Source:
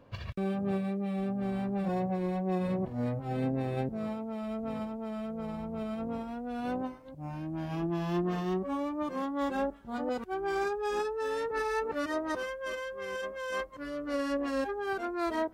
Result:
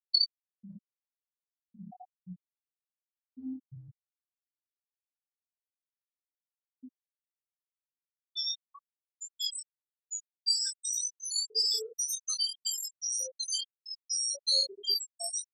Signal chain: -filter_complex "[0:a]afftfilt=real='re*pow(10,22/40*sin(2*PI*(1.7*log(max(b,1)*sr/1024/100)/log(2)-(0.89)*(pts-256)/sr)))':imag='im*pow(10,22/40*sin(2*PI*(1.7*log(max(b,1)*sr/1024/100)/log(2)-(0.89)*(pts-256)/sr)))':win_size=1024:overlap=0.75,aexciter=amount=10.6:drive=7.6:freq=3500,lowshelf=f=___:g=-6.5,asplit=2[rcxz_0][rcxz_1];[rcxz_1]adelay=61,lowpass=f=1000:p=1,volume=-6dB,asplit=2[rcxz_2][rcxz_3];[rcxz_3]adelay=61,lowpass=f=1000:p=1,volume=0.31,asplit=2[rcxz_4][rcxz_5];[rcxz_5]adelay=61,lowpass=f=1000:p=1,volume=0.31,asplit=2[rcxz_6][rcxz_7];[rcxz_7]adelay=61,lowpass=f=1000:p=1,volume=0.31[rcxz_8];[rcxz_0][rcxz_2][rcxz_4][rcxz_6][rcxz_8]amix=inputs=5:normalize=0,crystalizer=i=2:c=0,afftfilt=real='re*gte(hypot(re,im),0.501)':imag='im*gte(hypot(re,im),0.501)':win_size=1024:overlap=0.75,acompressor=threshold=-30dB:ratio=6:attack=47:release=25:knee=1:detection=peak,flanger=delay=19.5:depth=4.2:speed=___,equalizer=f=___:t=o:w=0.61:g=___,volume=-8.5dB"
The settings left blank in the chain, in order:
270, 1.8, 4400, 14